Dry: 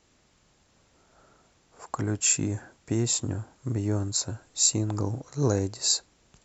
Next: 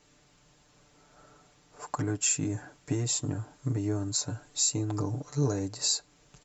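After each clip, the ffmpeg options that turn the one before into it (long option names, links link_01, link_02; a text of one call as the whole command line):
ffmpeg -i in.wav -af "acompressor=threshold=-31dB:ratio=2,aecho=1:1:6.8:0.76" out.wav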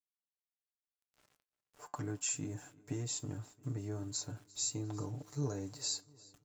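ffmpeg -i in.wav -af "aeval=exprs='val(0)*gte(abs(val(0)),0.00335)':channel_layout=same,flanger=delay=7.9:depth=1.3:regen=-78:speed=0.74:shape=sinusoidal,aecho=1:1:349|698|1047|1396:0.0708|0.0382|0.0206|0.0111,volume=-5dB" out.wav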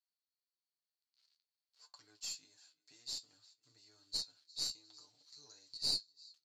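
ffmpeg -i in.wav -af "bandpass=frequency=4400:width_type=q:width=10:csg=0,flanger=delay=8.7:depth=4.1:regen=50:speed=0.53:shape=sinusoidal,aeval=exprs='0.0141*(cos(1*acos(clip(val(0)/0.0141,-1,1)))-cos(1*PI/2))+0.00251*(cos(2*acos(clip(val(0)/0.0141,-1,1)))-cos(2*PI/2))+0.000398*(cos(6*acos(clip(val(0)/0.0141,-1,1)))-cos(6*PI/2))':channel_layout=same,volume=15dB" out.wav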